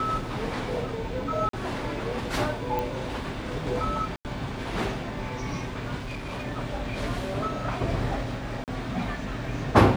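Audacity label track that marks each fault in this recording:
1.490000	1.530000	dropout 43 ms
2.790000	2.790000	pop
4.160000	4.250000	dropout 88 ms
5.970000	6.450000	clipped -30.5 dBFS
8.640000	8.680000	dropout 38 ms

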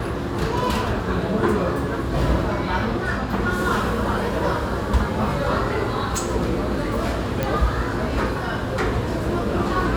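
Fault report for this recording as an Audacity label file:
7.430000	7.430000	pop -9 dBFS

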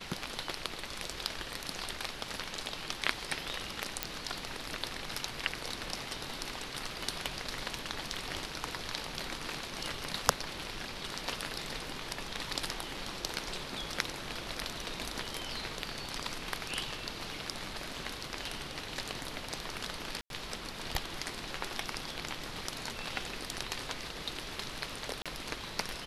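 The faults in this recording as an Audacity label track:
4.030000	4.030000	pop -11 dBFS
20.210000	20.300000	dropout 92 ms
25.220000	25.260000	dropout 36 ms

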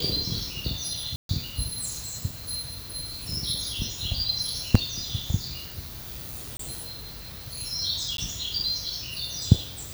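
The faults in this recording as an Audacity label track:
1.160000	1.290000	dropout 132 ms
4.750000	4.750000	dropout 3.3 ms
6.570000	6.590000	dropout 23 ms
8.170000	8.180000	dropout 12 ms

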